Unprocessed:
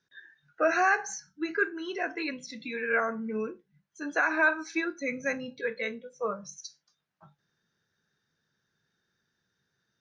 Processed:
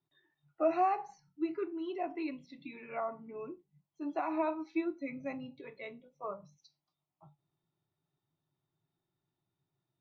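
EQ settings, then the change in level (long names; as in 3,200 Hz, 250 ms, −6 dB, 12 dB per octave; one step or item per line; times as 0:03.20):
high-frequency loss of the air 440 metres
phaser with its sweep stopped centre 320 Hz, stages 8
0.0 dB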